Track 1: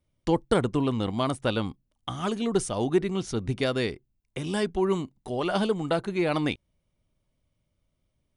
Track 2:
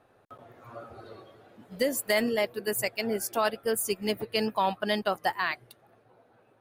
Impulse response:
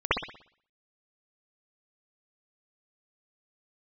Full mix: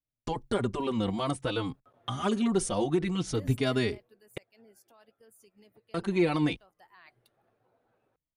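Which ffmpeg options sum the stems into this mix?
-filter_complex "[0:a]agate=range=-20dB:threshold=-42dB:ratio=16:detection=peak,alimiter=limit=-17.5dB:level=0:latency=1:release=48,asplit=2[a][b];[b]adelay=4.2,afreqshift=-0.59[c];[a][c]amix=inputs=2:normalize=1,volume=3dB,asplit=3[d][e][f];[d]atrim=end=4.38,asetpts=PTS-STARTPTS,afade=t=out:st=4.376:d=0.004:c=hsin[g];[e]atrim=start=4.38:end=5.94,asetpts=PTS-STARTPTS,volume=0[h];[f]atrim=start=5.94,asetpts=PTS-STARTPTS,afade=t=in:d=0.004:c=hsin[i];[g][h][i]concat=n=3:v=0:a=1[j];[1:a]highshelf=f=11k:g=-6,alimiter=level_in=2dB:limit=-24dB:level=0:latency=1:release=59,volume=-2dB,adelay=1550,volume=-1dB,afade=t=out:st=3.44:d=0.76:silence=0.316228,afade=t=in:st=6.78:d=0.62:silence=0.223872[k];[j][k]amix=inputs=2:normalize=0"

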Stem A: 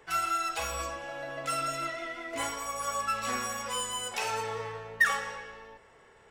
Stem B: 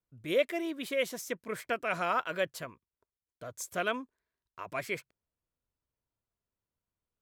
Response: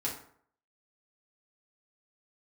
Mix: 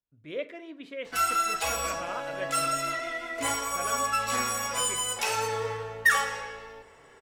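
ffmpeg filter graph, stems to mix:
-filter_complex "[0:a]adelay=1050,volume=0.5dB,asplit=2[a][b];[b]volume=-8.5dB[c];[1:a]lowpass=3.4k,volume=-9dB,asplit=2[d][e];[e]volume=-9.5dB[f];[2:a]atrim=start_sample=2205[g];[c][f]amix=inputs=2:normalize=0[h];[h][g]afir=irnorm=-1:irlink=0[i];[a][d][i]amix=inputs=3:normalize=0,equalizer=f=13k:w=0.39:g=5.5"

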